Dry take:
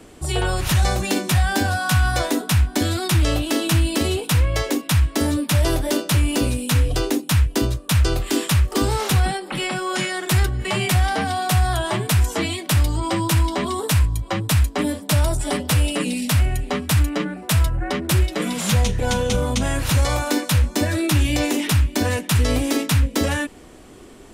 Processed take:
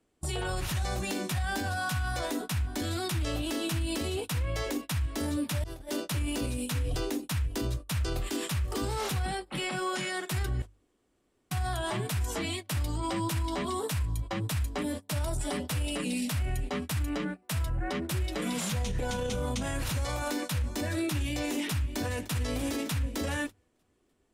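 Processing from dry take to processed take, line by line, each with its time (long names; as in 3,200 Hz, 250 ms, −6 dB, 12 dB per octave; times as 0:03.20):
0:05.64–0:06.05: fade in
0:10.62–0:11.51: fill with room tone
0:21.72–0:22.32: delay throw 300 ms, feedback 65%, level −12.5 dB
whole clip: noise gate −27 dBFS, range −24 dB; mains-hum notches 50/100 Hz; brickwall limiter −18.5 dBFS; level −5 dB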